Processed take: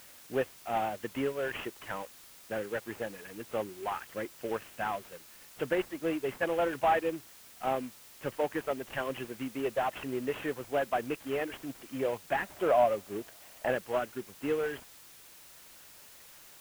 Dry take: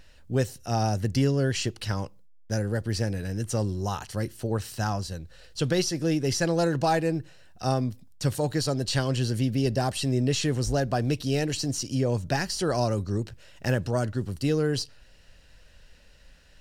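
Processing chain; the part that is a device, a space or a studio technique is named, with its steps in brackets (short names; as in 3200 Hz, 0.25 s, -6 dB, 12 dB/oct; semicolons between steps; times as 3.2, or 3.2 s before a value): reverb removal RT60 1.7 s; army field radio (BPF 390–2900 Hz; CVSD 16 kbps; white noise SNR 19 dB); 12.44–13.72 bell 660 Hz +8.5 dB 0.57 oct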